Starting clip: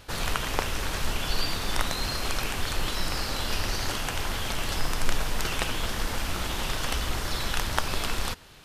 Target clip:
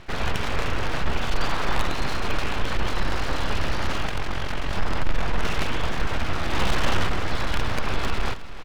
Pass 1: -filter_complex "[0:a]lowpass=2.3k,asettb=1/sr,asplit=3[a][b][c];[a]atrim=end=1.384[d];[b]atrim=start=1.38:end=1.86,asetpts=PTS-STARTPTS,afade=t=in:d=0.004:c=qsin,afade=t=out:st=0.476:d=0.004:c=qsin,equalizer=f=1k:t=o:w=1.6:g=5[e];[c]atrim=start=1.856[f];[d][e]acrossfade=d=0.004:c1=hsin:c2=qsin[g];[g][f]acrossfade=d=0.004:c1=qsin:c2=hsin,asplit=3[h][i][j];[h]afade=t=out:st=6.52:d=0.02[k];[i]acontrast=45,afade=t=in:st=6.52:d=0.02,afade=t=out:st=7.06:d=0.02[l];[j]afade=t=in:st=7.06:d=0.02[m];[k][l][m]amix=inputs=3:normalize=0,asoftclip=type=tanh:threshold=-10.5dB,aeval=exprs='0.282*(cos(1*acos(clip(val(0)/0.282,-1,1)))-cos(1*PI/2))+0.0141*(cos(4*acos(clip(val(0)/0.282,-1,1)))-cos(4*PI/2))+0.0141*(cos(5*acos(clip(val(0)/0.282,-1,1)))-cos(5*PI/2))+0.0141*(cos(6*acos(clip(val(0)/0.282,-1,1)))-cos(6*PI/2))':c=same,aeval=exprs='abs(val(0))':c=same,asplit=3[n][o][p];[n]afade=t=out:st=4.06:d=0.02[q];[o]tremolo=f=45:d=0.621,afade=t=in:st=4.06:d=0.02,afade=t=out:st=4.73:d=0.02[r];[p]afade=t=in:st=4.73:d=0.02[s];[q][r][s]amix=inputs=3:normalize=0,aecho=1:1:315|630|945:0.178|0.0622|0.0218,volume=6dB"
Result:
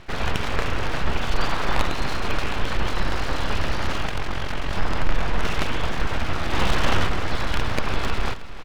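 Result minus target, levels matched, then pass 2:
soft clip: distortion -10 dB
-filter_complex "[0:a]lowpass=2.3k,asettb=1/sr,asplit=3[a][b][c];[a]atrim=end=1.384[d];[b]atrim=start=1.38:end=1.86,asetpts=PTS-STARTPTS,afade=t=in:d=0.004:c=qsin,afade=t=out:st=0.476:d=0.004:c=qsin,equalizer=f=1k:t=o:w=1.6:g=5[e];[c]atrim=start=1.856[f];[d][e]acrossfade=d=0.004:c1=hsin:c2=qsin[g];[g][f]acrossfade=d=0.004:c1=qsin:c2=hsin,asplit=3[h][i][j];[h]afade=t=out:st=6.52:d=0.02[k];[i]acontrast=45,afade=t=in:st=6.52:d=0.02,afade=t=out:st=7.06:d=0.02[l];[j]afade=t=in:st=7.06:d=0.02[m];[k][l][m]amix=inputs=3:normalize=0,asoftclip=type=tanh:threshold=-19dB,aeval=exprs='0.282*(cos(1*acos(clip(val(0)/0.282,-1,1)))-cos(1*PI/2))+0.0141*(cos(4*acos(clip(val(0)/0.282,-1,1)))-cos(4*PI/2))+0.0141*(cos(5*acos(clip(val(0)/0.282,-1,1)))-cos(5*PI/2))+0.0141*(cos(6*acos(clip(val(0)/0.282,-1,1)))-cos(6*PI/2))':c=same,aeval=exprs='abs(val(0))':c=same,asplit=3[n][o][p];[n]afade=t=out:st=4.06:d=0.02[q];[o]tremolo=f=45:d=0.621,afade=t=in:st=4.06:d=0.02,afade=t=out:st=4.73:d=0.02[r];[p]afade=t=in:st=4.73:d=0.02[s];[q][r][s]amix=inputs=3:normalize=0,aecho=1:1:315|630|945:0.178|0.0622|0.0218,volume=6dB"

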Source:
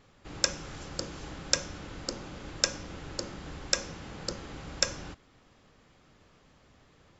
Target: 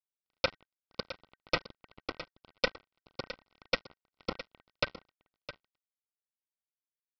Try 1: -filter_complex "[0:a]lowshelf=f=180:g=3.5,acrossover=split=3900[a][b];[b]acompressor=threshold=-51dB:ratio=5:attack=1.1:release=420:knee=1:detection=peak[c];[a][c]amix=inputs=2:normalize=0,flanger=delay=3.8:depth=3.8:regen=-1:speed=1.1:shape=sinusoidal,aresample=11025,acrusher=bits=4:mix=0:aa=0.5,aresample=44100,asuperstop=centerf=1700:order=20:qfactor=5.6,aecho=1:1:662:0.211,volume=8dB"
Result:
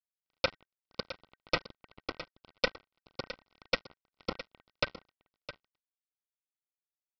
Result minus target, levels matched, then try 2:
compressor: peak gain reduction -6 dB
-filter_complex "[0:a]lowshelf=f=180:g=3.5,acrossover=split=3900[a][b];[b]acompressor=threshold=-58.5dB:ratio=5:attack=1.1:release=420:knee=1:detection=peak[c];[a][c]amix=inputs=2:normalize=0,flanger=delay=3.8:depth=3.8:regen=-1:speed=1.1:shape=sinusoidal,aresample=11025,acrusher=bits=4:mix=0:aa=0.5,aresample=44100,asuperstop=centerf=1700:order=20:qfactor=5.6,aecho=1:1:662:0.211,volume=8dB"

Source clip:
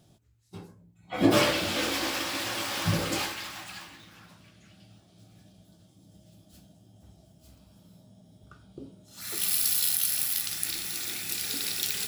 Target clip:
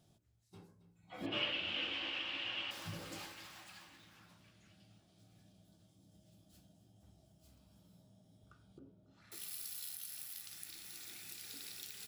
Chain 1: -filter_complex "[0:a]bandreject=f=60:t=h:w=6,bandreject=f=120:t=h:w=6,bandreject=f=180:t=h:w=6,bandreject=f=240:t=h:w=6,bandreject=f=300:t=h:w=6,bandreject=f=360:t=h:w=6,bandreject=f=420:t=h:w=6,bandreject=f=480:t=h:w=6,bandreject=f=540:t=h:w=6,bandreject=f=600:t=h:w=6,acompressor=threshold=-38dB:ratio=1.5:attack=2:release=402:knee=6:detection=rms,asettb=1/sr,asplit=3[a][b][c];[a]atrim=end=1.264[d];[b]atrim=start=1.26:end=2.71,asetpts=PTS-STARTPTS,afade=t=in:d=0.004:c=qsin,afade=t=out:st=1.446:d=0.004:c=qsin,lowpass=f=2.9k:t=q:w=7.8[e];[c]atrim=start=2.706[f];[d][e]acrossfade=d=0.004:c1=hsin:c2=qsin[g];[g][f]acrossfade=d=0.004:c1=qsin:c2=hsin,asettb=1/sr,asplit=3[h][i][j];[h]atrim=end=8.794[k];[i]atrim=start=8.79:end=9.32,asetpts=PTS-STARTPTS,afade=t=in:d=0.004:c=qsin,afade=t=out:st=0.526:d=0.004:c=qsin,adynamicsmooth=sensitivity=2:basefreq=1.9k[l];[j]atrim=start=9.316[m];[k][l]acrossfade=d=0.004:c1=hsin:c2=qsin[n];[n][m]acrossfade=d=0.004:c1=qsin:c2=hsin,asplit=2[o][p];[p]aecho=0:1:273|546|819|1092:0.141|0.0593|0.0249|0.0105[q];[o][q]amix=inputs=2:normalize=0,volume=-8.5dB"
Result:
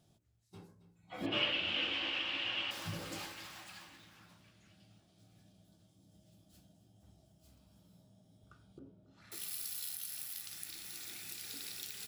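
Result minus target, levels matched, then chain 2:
compressor: peak gain reduction -4 dB
-filter_complex "[0:a]bandreject=f=60:t=h:w=6,bandreject=f=120:t=h:w=6,bandreject=f=180:t=h:w=6,bandreject=f=240:t=h:w=6,bandreject=f=300:t=h:w=6,bandreject=f=360:t=h:w=6,bandreject=f=420:t=h:w=6,bandreject=f=480:t=h:w=6,bandreject=f=540:t=h:w=6,bandreject=f=600:t=h:w=6,acompressor=threshold=-49.5dB:ratio=1.5:attack=2:release=402:knee=6:detection=rms,asettb=1/sr,asplit=3[a][b][c];[a]atrim=end=1.264[d];[b]atrim=start=1.26:end=2.71,asetpts=PTS-STARTPTS,afade=t=in:d=0.004:c=qsin,afade=t=out:st=1.446:d=0.004:c=qsin,lowpass=f=2.9k:t=q:w=7.8[e];[c]atrim=start=2.706[f];[d][e]acrossfade=d=0.004:c1=hsin:c2=qsin[g];[g][f]acrossfade=d=0.004:c1=qsin:c2=hsin,asettb=1/sr,asplit=3[h][i][j];[h]atrim=end=8.794[k];[i]atrim=start=8.79:end=9.32,asetpts=PTS-STARTPTS,afade=t=in:d=0.004:c=qsin,afade=t=out:st=0.526:d=0.004:c=qsin,adynamicsmooth=sensitivity=2:basefreq=1.9k[l];[j]atrim=start=9.316[m];[k][l]acrossfade=d=0.004:c1=hsin:c2=qsin[n];[n][m]acrossfade=d=0.004:c1=qsin:c2=hsin,asplit=2[o][p];[p]aecho=0:1:273|546|819|1092:0.141|0.0593|0.0249|0.0105[q];[o][q]amix=inputs=2:normalize=0,volume=-8.5dB"

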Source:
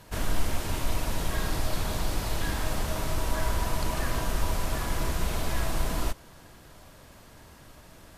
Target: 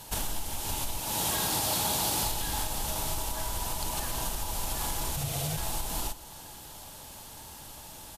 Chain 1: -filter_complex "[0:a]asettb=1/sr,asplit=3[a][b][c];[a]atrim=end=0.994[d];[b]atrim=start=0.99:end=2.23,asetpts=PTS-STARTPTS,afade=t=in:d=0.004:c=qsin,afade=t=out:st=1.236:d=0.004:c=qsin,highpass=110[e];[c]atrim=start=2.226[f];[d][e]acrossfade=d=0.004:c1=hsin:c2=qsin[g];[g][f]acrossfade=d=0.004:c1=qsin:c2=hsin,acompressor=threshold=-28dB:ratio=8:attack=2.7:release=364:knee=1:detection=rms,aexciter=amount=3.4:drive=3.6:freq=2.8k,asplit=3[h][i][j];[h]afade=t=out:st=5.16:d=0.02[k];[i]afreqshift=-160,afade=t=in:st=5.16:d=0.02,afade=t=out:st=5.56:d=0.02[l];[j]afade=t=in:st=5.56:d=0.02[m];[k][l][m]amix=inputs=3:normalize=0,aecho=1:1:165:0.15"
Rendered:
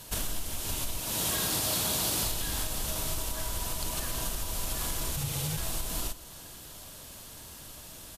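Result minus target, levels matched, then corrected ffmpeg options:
1000 Hz band -5.5 dB
-filter_complex "[0:a]asettb=1/sr,asplit=3[a][b][c];[a]atrim=end=0.994[d];[b]atrim=start=0.99:end=2.23,asetpts=PTS-STARTPTS,afade=t=in:d=0.004:c=qsin,afade=t=out:st=1.236:d=0.004:c=qsin,highpass=110[e];[c]atrim=start=2.226[f];[d][e]acrossfade=d=0.004:c1=hsin:c2=qsin[g];[g][f]acrossfade=d=0.004:c1=qsin:c2=hsin,acompressor=threshold=-28dB:ratio=8:attack=2.7:release=364:knee=1:detection=rms,equalizer=f=850:w=6.7:g=14,aexciter=amount=3.4:drive=3.6:freq=2.8k,asplit=3[h][i][j];[h]afade=t=out:st=5.16:d=0.02[k];[i]afreqshift=-160,afade=t=in:st=5.16:d=0.02,afade=t=out:st=5.56:d=0.02[l];[j]afade=t=in:st=5.56:d=0.02[m];[k][l][m]amix=inputs=3:normalize=0,aecho=1:1:165:0.15"

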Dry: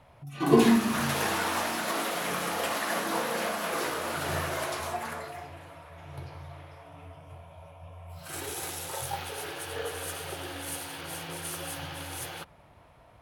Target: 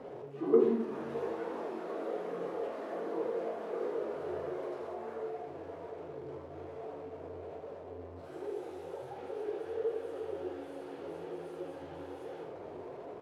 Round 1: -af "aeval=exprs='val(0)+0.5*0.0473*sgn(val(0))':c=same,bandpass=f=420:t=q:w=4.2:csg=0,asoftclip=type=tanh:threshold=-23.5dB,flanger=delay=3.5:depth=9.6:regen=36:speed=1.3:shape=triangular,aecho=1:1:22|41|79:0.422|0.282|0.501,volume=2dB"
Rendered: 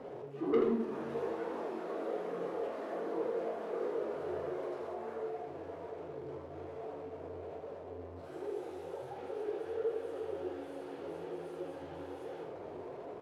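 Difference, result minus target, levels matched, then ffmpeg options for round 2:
soft clip: distortion +11 dB
-af "aeval=exprs='val(0)+0.5*0.0473*sgn(val(0))':c=same,bandpass=f=420:t=q:w=4.2:csg=0,asoftclip=type=tanh:threshold=-12.5dB,flanger=delay=3.5:depth=9.6:regen=36:speed=1.3:shape=triangular,aecho=1:1:22|41|79:0.422|0.282|0.501,volume=2dB"

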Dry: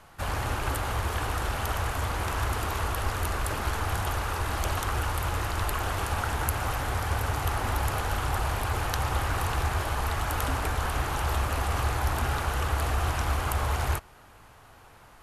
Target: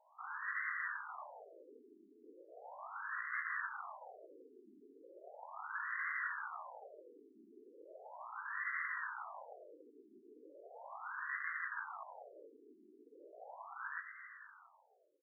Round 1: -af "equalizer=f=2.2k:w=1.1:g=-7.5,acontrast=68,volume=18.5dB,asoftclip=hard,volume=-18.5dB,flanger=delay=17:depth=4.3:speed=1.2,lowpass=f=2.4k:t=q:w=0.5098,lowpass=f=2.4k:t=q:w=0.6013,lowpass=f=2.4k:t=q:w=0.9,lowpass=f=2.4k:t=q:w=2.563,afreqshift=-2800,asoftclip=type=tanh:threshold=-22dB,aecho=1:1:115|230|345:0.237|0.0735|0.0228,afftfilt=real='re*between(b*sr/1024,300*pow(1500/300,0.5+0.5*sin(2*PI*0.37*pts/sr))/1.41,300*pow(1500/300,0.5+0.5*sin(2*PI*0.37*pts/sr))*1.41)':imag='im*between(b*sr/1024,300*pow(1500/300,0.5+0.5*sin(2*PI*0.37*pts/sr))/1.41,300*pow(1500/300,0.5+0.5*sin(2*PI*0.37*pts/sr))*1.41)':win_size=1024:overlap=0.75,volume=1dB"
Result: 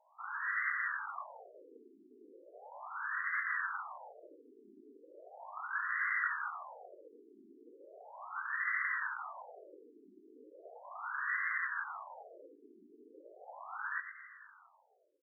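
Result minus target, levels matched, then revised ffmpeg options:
overloaded stage: distortion -9 dB
-af "equalizer=f=2.2k:w=1.1:g=-7.5,acontrast=68,volume=30dB,asoftclip=hard,volume=-30dB,flanger=delay=17:depth=4.3:speed=1.2,lowpass=f=2.4k:t=q:w=0.5098,lowpass=f=2.4k:t=q:w=0.6013,lowpass=f=2.4k:t=q:w=0.9,lowpass=f=2.4k:t=q:w=2.563,afreqshift=-2800,asoftclip=type=tanh:threshold=-22dB,aecho=1:1:115|230|345:0.237|0.0735|0.0228,afftfilt=real='re*between(b*sr/1024,300*pow(1500/300,0.5+0.5*sin(2*PI*0.37*pts/sr))/1.41,300*pow(1500/300,0.5+0.5*sin(2*PI*0.37*pts/sr))*1.41)':imag='im*between(b*sr/1024,300*pow(1500/300,0.5+0.5*sin(2*PI*0.37*pts/sr))/1.41,300*pow(1500/300,0.5+0.5*sin(2*PI*0.37*pts/sr))*1.41)':win_size=1024:overlap=0.75,volume=1dB"

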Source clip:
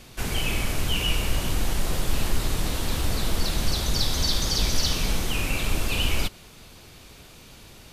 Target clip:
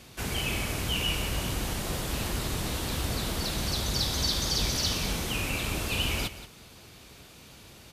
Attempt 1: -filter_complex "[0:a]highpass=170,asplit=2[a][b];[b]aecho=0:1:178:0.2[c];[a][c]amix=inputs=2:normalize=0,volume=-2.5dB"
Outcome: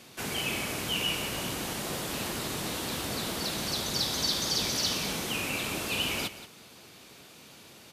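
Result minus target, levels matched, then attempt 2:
125 Hz band -7.0 dB
-filter_complex "[0:a]highpass=53,asplit=2[a][b];[b]aecho=0:1:178:0.2[c];[a][c]amix=inputs=2:normalize=0,volume=-2.5dB"

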